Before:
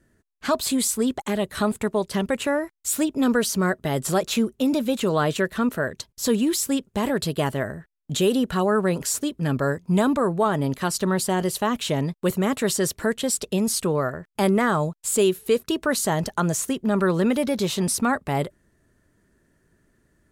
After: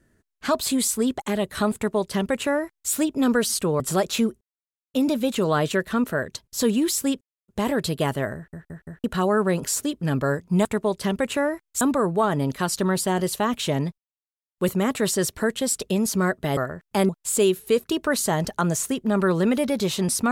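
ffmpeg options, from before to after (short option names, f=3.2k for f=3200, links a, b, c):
-filter_complex "[0:a]asplit=15[a][b][c][d][e][f][g][h][i][j][k][l][m][n][o];[a]atrim=end=3.502[p];[b]atrim=start=13.708:end=14.012[q];[c]atrim=start=3.978:end=4.59,asetpts=PTS-STARTPTS,afade=t=out:st=0.608:d=0.004:c=hsin,apad=pad_dur=0.53[r];[d]atrim=start=4.59:end=6.86,asetpts=PTS-STARTPTS,afade=t=in:d=0.004:c=hsin,afade=t=out:st=2.266:d=0.004:c=hsin,apad=pad_dur=0.27[s];[e]atrim=start=6.86:end=7.912,asetpts=PTS-STARTPTS,afade=t=in:d=0.004:c=hsin[t];[f]atrim=start=7.738:end=7.912[u];[g]atrim=start=7.738:end=7.912[v];[h]atrim=start=7.738:end=7.912[w];[i]atrim=start=8.418:end=10.032[x];[j]atrim=start=1.748:end=2.912[y];[k]atrim=start=10.028:end=12.2,asetpts=PTS-STARTPTS,afade=t=out:st=2.168:d=0.004:c=hsin,apad=pad_dur=0.6[z];[l]atrim=start=12.2:end=13.712,asetpts=PTS-STARTPTS,afade=t=in:d=0.004:c=hsin[aa];[m]atrim=start=3.498:end=3.982[ab];[n]atrim=start=14.008:end=14.532[ac];[o]atrim=start=14.878[ad];[p][q]acrossfade=d=0.004:c1=hsin:c2=hsin[ae];[r][s][t]concat=n=3:v=0:a=1[af];[ae][af]acrossfade=d=0.004:c1=hsin:c2=hsin[ag];[ag][u]acrossfade=d=0.004:c1=hsin:c2=hsin[ah];[ah][v]acrossfade=d=0.004:c1=hsin:c2=hsin[ai];[ai][w]acrossfade=d=0.004:c1=hsin:c2=hsin[aj];[aj][x]acrossfade=d=0.004:c1=hsin:c2=hsin[ak];[ak][y]acrossfade=d=0.004:c1=hsin:c2=hsin[al];[z][aa]concat=n=2:v=0:a=1[am];[al][am]acrossfade=d=0.004:c1=hsin:c2=hsin[an];[an][ab]acrossfade=d=0.004:c1=hsin:c2=hsin[ao];[ao][ac]acrossfade=d=0.004:c1=hsin:c2=hsin[ap];[ap][ad]acrossfade=d=0.004:c1=hsin:c2=hsin"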